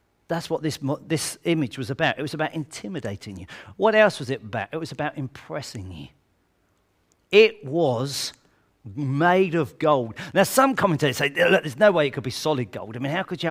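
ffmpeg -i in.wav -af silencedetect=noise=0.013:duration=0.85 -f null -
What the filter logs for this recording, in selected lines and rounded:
silence_start: 6.06
silence_end: 7.32 | silence_duration: 1.26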